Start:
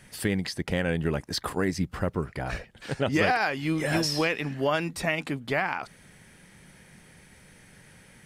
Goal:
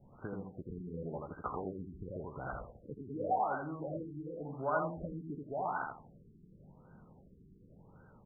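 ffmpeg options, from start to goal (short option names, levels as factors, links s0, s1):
-filter_complex "[0:a]asettb=1/sr,asplit=3[s0][s1][s2];[s0]atrim=end=4.764[s3];[s1]atrim=start=4.76:end=5.35,asetpts=PTS-STARTPTS,afade=t=in:d=0.004:c=qsin,afade=t=out:st=0.586:d=0.004:c=qsin,lowshelf=f=450:g=11.5[s4];[s2]atrim=start=5.346[s5];[s3][s4]acrossfade=d=0.004:c1=hsin:c2=qsin[s6];[s6][s5]acrossfade=d=0.004:c1=qsin:c2=hsin,acrossover=split=610|3300[s7][s8][s9];[s7]acompressor=threshold=0.0126:ratio=6[s10];[s8]asplit=2[s11][s12];[s12]adelay=16,volume=0.562[s13];[s11][s13]amix=inputs=2:normalize=0[s14];[s10][s14][s9]amix=inputs=3:normalize=0,aecho=1:1:83|166|249|332:0.668|0.207|0.0642|0.0199,afftfilt=real='re*lt(b*sr/1024,420*pow(1600/420,0.5+0.5*sin(2*PI*0.9*pts/sr)))':imag='im*lt(b*sr/1024,420*pow(1600/420,0.5+0.5*sin(2*PI*0.9*pts/sr)))':win_size=1024:overlap=0.75,volume=0.531"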